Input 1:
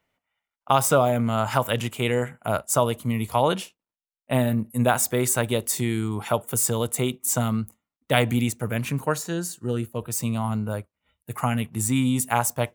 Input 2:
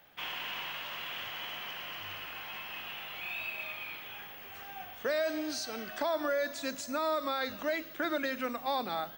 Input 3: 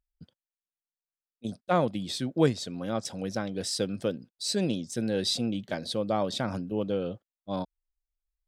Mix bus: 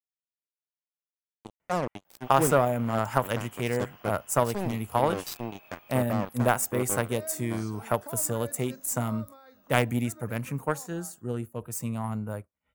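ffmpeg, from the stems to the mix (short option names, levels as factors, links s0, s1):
-filter_complex "[0:a]aeval=exprs='0.841*(cos(1*acos(clip(val(0)/0.841,-1,1)))-cos(1*PI/2))+0.0596*(cos(7*acos(clip(val(0)/0.841,-1,1)))-cos(7*PI/2))+0.00668*(cos(8*acos(clip(val(0)/0.841,-1,1)))-cos(8*PI/2))':c=same,adelay=1600,volume=0.944[s0];[1:a]equalizer=f=2100:w=1.7:g=-7.5,adelay=2050,volume=0.335,afade=t=out:st=8.97:d=0.4:silence=0.398107[s1];[2:a]acrusher=bits=3:mix=0:aa=0.5,volume=0.631[s2];[s0][s1][s2]amix=inputs=3:normalize=0,equalizer=f=3700:w=1.4:g=-9.5"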